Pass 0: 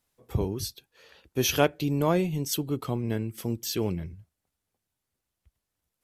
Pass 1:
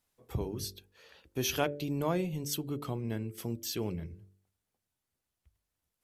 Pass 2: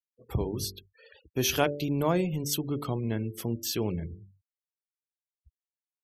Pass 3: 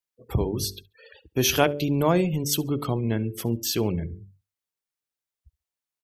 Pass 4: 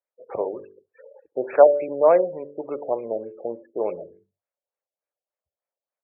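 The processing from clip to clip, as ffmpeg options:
ffmpeg -i in.wav -filter_complex "[0:a]bandreject=frequency=48.44:width_type=h:width=4,bandreject=frequency=96.88:width_type=h:width=4,bandreject=frequency=145.32:width_type=h:width=4,bandreject=frequency=193.76:width_type=h:width=4,bandreject=frequency=242.2:width_type=h:width=4,bandreject=frequency=290.64:width_type=h:width=4,bandreject=frequency=339.08:width_type=h:width=4,bandreject=frequency=387.52:width_type=h:width=4,bandreject=frequency=435.96:width_type=h:width=4,bandreject=frequency=484.4:width_type=h:width=4,bandreject=frequency=532.84:width_type=h:width=4,bandreject=frequency=581.28:width_type=h:width=4,asplit=2[link_01][link_02];[link_02]acompressor=threshold=-35dB:ratio=6,volume=-1.5dB[link_03];[link_01][link_03]amix=inputs=2:normalize=0,volume=-8dB" out.wav
ffmpeg -i in.wav -af "afftfilt=real='re*gte(hypot(re,im),0.00251)':imag='im*gte(hypot(re,im),0.00251)':win_size=1024:overlap=0.75,volume=5dB" out.wav
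ffmpeg -i in.wav -af "aecho=1:1:69|138:0.0631|0.0145,volume=5dB" out.wav
ffmpeg -i in.wav -af "highpass=frequency=560:width_type=q:width=4.9,afftfilt=real='re*lt(b*sr/1024,790*pow(2700/790,0.5+0.5*sin(2*PI*3.4*pts/sr)))':imag='im*lt(b*sr/1024,790*pow(2700/790,0.5+0.5*sin(2*PI*3.4*pts/sr)))':win_size=1024:overlap=0.75,volume=-1dB" out.wav

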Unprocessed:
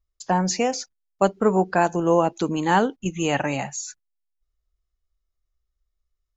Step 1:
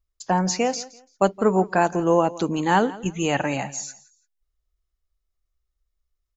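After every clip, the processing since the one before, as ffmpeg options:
ffmpeg -i in.wav -af "aecho=1:1:169|338:0.112|0.0281" out.wav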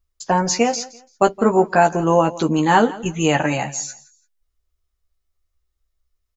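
ffmpeg -i in.wav -filter_complex "[0:a]asplit=2[link_01][link_02];[link_02]adelay=13,volume=-5dB[link_03];[link_01][link_03]amix=inputs=2:normalize=0,volume=3.5dB" out.wav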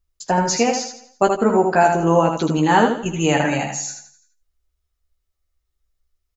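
ffmpeg -i in.wav -af "bandreject=frequency=1100:width=16,aecho=1:1:78|156|234:0.562|0.0956|0.0163,volume=-1dB" out.wav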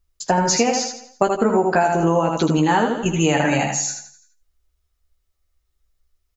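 ffmpeg -i in.wav -af "acompressor=threshold=-17dB:ratio=10,volume=4dB" out.wav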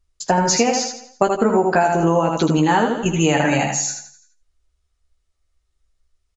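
ffmpeg -i in.wav -af "aresample=22050,aresample=44100,volume=1dB" out.wav

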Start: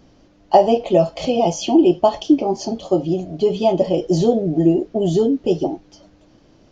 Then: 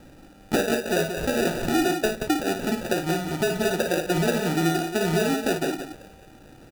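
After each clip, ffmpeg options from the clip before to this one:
ffmpeg -i in.wav -filter_complex "[0:a]acompressor=threshold=-27dB:ratio=3,acrusher=samples=41:mix=1:aa=0.000001,asplit=2[link_01][link_02];[link_02]aecho=0:1:55.39|177.8:0.447|0.398[link_03];[link_01][link_03]amix=inputs=2:normalize=0,volume=2dB" out.wav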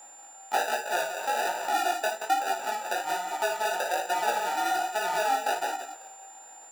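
ffmpeg -i in.wav -af "flanger=delay=15.5:depth=6.5:speed=1.2,aeval=exprs='val(0)+0.00501*sin(2*PI*7200*n/s)':channel_layout=same,highpass=frequency=850:width_type=q:width=5.1,volume=-1.5dB" out.wav

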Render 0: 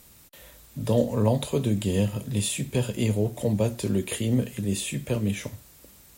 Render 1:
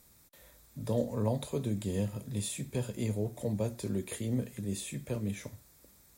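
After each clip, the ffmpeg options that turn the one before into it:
ffmpeg -i in.wav -af "equalizer=frequency=2900:width_type=o:width=0.26:gain=-10,volume=-8.5dB" out.wav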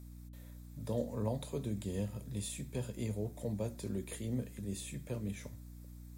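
ffmpeg -i in.wav -af "aeval=exprs='val(0)+0.00631*(sin(2*PI*60*n/s)+sin(2*PI*2*60*n/s)/2+sin(2*PI*3*60*n/s)/3+sin(2*PI*4*60*n/s)/4+sin(2*PI*5*60*n/s)/5)':channel_layout=same,volume=-5dB" out.wav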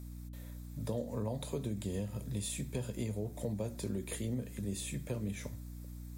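ffmpeg -i in.wav -af "acompressor=threshold=-37dB:ratio=6,volume=4.5dB" out.wav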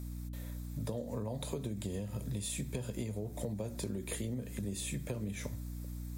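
ffmpeg -i in.wav -af "acompressor=threshold=-38dB:ratio=6,volume=4dB" out.wav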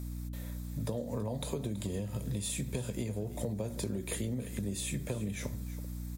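ffmpeg -i in.wav -af "aecho=1:1:328:0.168,volume=2.5dB" out.wav

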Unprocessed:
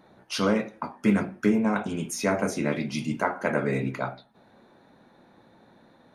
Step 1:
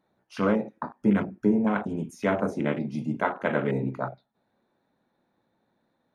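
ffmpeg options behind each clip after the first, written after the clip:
ffmpeg -i in.wav -af "afwtdn=0.0251" out.wav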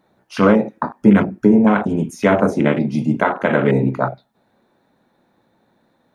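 ffmpeg -i in.wav -af "alimiter=level_in=12.5dB:limit=-1dB:release=50:level=0:latency=1,volume=-1dB" out.wav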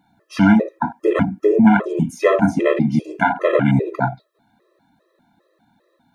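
ffmpeg -i in.wav -af "afftfilt=real='re*gt(sin(2*PI*2.5*pts/sr)*(1-2*mod(floor(b*sr/1024/340),2)),0)':imag='im*gt(sin(2*PI*2.5*pts/sr)*(1-2*mod(floor(b*sr/1024/340),2)),0)':win_size=1024:overlap=0.75,volume=3dB" out.wav

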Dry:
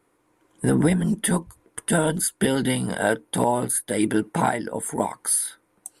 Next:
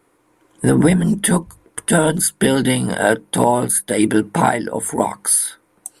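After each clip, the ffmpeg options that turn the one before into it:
ffmpeg -i in.wav -af "bandreject=frequency=50:width_type=h:width=6,bandreject=frequency=100:width_type=h:width=6,bandreject=frequency=150:width_type=h:width=6,bandreject=frequency=200:width_type=h:width=6,volume=6.5dB" out.wav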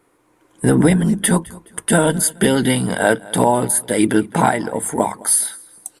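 ffmpeg -i in.wav -af "aecho=1:1:211|422:0.0794|0.0278" out.wav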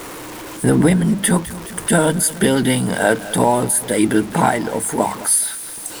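ffmpeg -i in.wav -af "aeval=exprs='val(0)+0.5*0.0531*sgn(val(0))':channel_layout=same,volume=-1dB" out.wav

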